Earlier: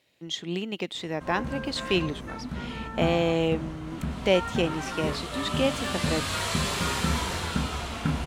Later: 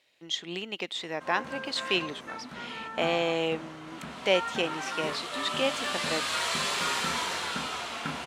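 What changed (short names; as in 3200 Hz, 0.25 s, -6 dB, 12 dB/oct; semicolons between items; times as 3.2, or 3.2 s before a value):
speech: remove HPF 140 Hz; master: add weighting filter A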